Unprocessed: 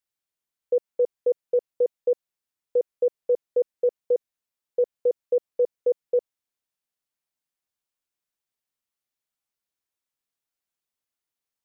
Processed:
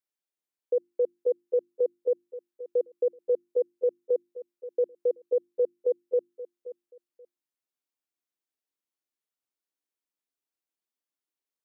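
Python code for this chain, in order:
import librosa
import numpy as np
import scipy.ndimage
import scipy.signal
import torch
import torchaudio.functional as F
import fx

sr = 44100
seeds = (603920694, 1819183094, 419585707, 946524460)

y = scipy.signal.sosfilt(scipy.signal.butter(2, 230.0, 'highpass', fs=sr, output='sos'), x)
y = fx.peak_eq(y, sr, hz=310.0, db=9.0, octaves=0.99)
y = fx.hum_notches(y, sr, base_hz=50, count=7)
y = fx.echo_feedback(y, sr, ms=529, feedback_pct=23, wet_db=-15.0)
y = y * librosa.db_to_amplitude(-6.5)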